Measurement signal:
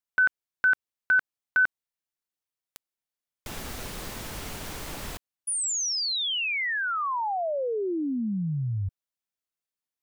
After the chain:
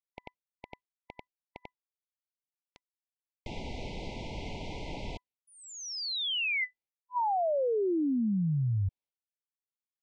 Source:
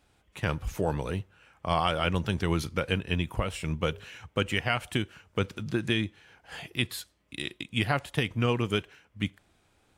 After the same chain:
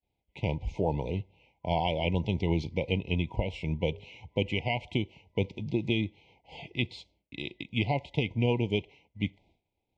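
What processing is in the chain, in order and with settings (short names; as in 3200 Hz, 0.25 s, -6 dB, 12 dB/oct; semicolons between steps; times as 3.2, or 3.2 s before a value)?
FFT band-reject 1000–2000 Hz; expander -56 dBFS; Gaussian blur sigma 2 samples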